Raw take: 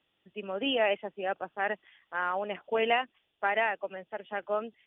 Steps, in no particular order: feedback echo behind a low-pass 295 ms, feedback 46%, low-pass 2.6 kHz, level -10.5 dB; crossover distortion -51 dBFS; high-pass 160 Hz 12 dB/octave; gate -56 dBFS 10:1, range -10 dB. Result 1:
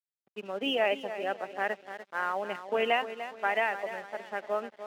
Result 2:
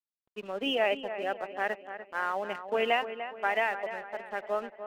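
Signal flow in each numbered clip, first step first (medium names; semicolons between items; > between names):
gate > feedback echo behind a low-pass > crossover distortion > high-pass; high-pass > gate > crossover distortion > feedback echo behind a low-pass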